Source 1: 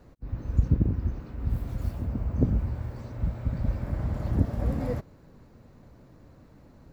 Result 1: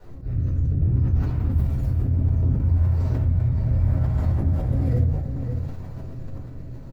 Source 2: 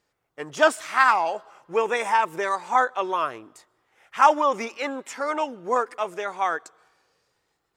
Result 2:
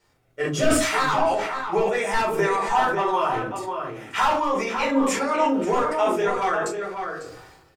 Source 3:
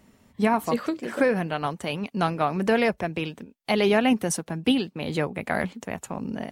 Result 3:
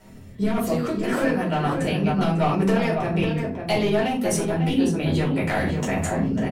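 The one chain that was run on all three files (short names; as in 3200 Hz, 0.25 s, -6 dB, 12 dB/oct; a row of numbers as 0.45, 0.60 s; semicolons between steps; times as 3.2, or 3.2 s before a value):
high shelf 9900 Hz +3 dB; de-hum 46.94 Hz, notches 12; hard clip -15.5 dBFS; bell 85 Hz +11.5 dB 0.25 oct; rotary speaker horn 0.65 Hz; compressor 12:1, threshold -33 dBFS; outdoor echo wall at 94 m, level -6 dB; shoebox room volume 230 m³, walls furnished, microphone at 4.6 m; sustainer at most 46 dB/s; match loudness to -23 LUFS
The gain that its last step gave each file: +2.0, +4.5, +4.0 dB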